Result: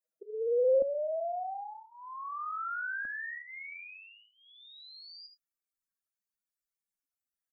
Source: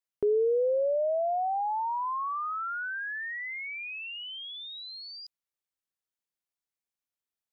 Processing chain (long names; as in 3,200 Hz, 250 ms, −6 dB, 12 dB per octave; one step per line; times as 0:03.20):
expanding power law on the bin magnitudes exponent 3.6
notch filter 2,000 Hz
double-tracking delay 25 ms −14 dB
single-tap delay 76 ms −8.5 dB
brickwall limiter −31 dBFS, peak gain reduction 13 dB
parametric band 500 Hz +13 dB 1.3 octaves, from 0:00.82 +2.5 dB, from 0:03.05 −12 dB
phaser with its sweep stopped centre 620 Hz, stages 8